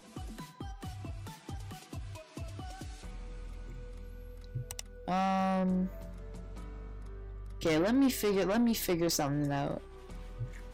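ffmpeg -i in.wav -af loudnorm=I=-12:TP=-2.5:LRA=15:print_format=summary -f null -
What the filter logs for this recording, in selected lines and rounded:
Input Integrated:    -31.9 LUFS
Input True Peak:     -21.4 dBTP
Input LRA:            14.4 LU
Input Threshold:     -44.2 LUFS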